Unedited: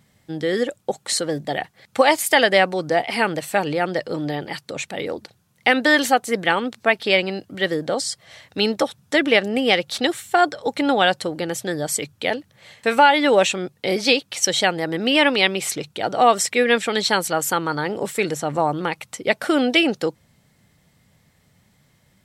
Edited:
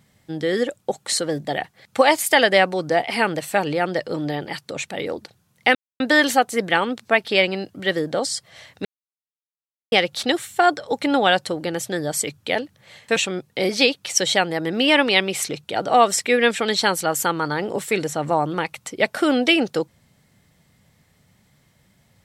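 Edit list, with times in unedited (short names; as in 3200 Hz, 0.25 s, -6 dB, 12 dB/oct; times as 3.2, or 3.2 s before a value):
5.75 insert silence 0.25 s
8.6–9.67 mute
12.91–13.43 cut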